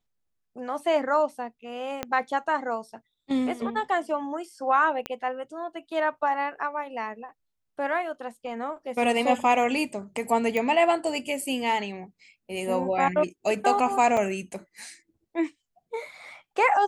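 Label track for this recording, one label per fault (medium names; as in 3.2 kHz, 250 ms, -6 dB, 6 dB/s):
2.030000	2.030000	pop -13 dBFS
5.060000	5.060000	pop -16 dBFS
10.570000	10.570000	pop -15 dBFS
14.170000	14.170000	dropout 3.8 ms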